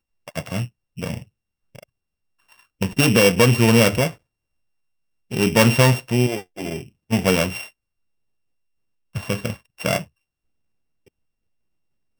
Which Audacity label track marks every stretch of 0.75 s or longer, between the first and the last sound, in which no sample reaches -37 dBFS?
1.830000	2.810000	silence
4.140000	5.310000	silence
7.680000	9.150000	silence